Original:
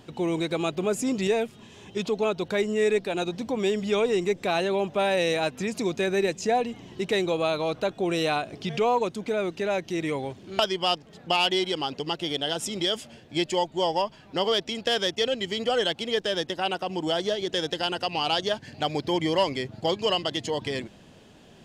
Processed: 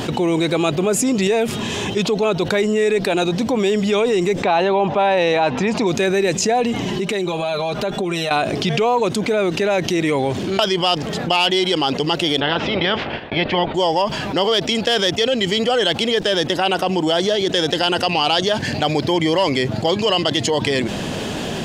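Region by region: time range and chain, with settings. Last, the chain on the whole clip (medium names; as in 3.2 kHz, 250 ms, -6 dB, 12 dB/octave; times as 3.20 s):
4.43–5.87 s: low-pass 4 kHz + peaking EQ 880 Hz +9.5 dB 0.53 oct
6.86–8.31 s: compression 5:1, threshold -41 dBFS + comb 5 ms, depth 74%
12.39–13.74 s: spectral peaks clipped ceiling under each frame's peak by 16 dB + Bessel low-pass 2.2 kHz, order 6 + gate -50 dBFS, range -23 dB
whole clip: bass shelf 87 Hz -6 dB; level flattener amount 70%; trim +4 dB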